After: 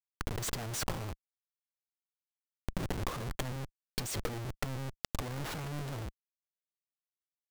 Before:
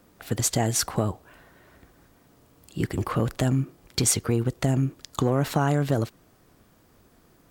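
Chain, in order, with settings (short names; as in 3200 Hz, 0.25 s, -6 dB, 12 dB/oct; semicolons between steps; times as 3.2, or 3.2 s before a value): requantised 8-bit, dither none; Schmitt trigger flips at -33.5 dBFS; power-law curve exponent 3; backwards sustainer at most 42 dB/s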